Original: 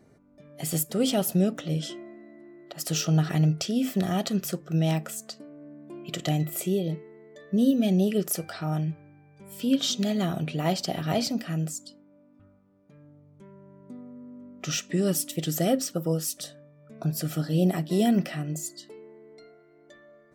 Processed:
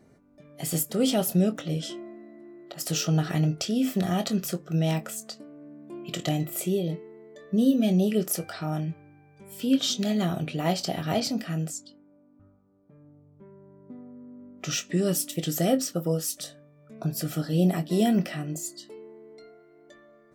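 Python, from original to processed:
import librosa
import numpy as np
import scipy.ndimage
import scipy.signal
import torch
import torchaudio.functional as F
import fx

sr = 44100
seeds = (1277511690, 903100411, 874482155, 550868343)

y = fx.doubler(x, sr, ms=23.0, db=-10.5)
y = fx.env_lowpass(y, sr, base_hz=1100.0, full_db=-27.5, at=(11.2, 14.58))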